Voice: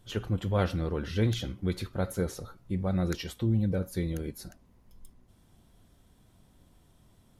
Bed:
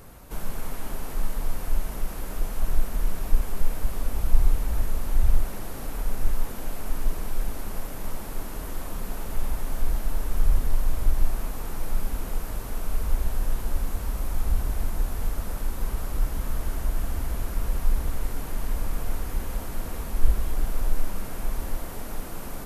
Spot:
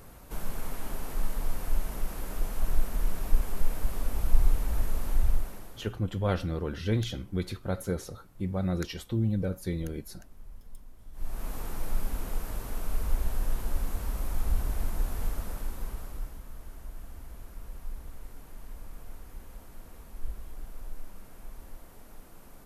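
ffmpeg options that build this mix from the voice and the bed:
ffmpeg -i stem1.wav -i stem2.wav -filter_complex "[0:a]adelay=5700,volume=-1dB[link_01];[1:a]volume=20.5dB,afade=type=out:start_time=5.09:duration=0.87:silence=0.0630957,afade=type=in:start_time=11.12:duration=0.41:silence=0.0668344,afade=type=out:start_time=15.25:duration=1.18:silence=0.237137[link_02];[link_01][link_02]amix=inputs=2:normalize=0" out.wav

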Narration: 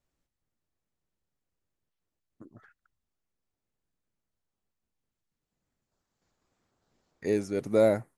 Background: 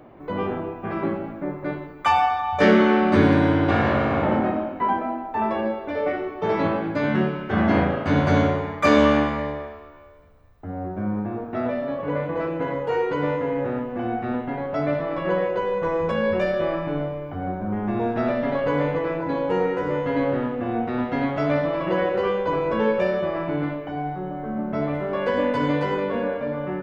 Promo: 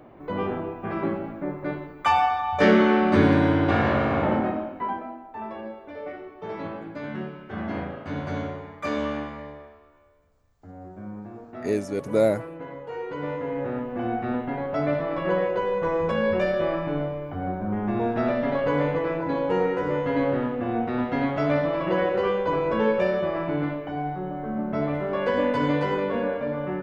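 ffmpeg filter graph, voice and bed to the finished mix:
ffmpeg -i stem1.wav -i stem2.wav -filter_complex "[0:a]adelay=4400,volume=2dB[link_01];[1:a]volume=9dB,afade=type=out:start_time=4.26:duration=0.93:silence=0.316228,afade=type=in:start_time=12.92:duration=1.14:silence=0.298538[link_02];[link_01][link_02]amix=inputs=2:normalize=0" out.wav

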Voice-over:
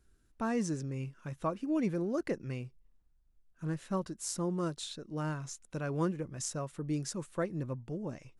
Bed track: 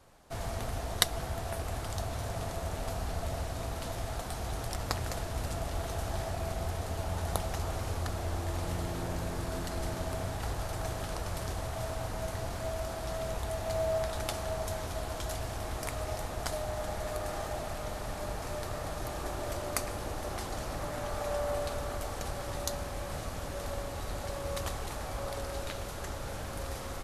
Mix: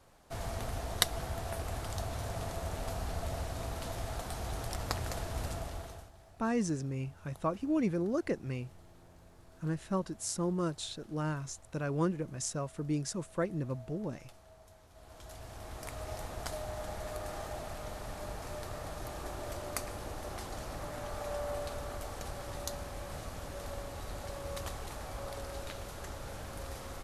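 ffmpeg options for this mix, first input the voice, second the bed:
ffmpeg -i stem1.wav -i stem2.wav -filter_complex "[0:a]adelay=6000,volume=1dB[link_01];[1:a]volume=16.5dB,afade=type=out:start_time=5.45:duration=0.66:silence=0.0891251,afade=type=in:start_time=14.91:duration=1.31:silence=0.11885[link_02];[link_01][link_02]amix=inputs=2:normalize=0" out.wav

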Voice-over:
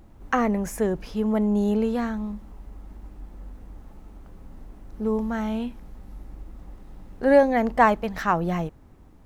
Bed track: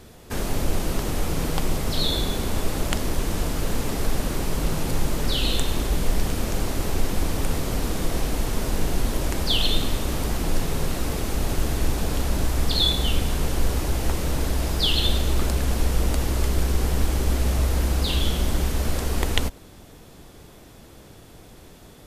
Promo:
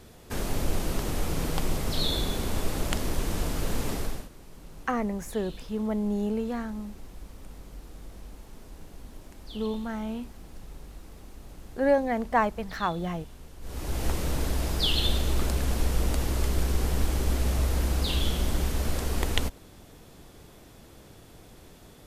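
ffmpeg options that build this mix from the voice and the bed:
ffmpeg -i stem1.wav -i stem2.wav -filter_complex "[0:a]adelay=4550,volume=-6dB[link_01];[1:a]volume=15.5dB,afade=type=out:start_time=3.92:duration=0.37:silence=0.105925,afade=type=in:start_time=13.61:duration=0.44:silence=0.105925[link_02];[link_01][link_02]amix=inputs=2:normalize=0" out.wav

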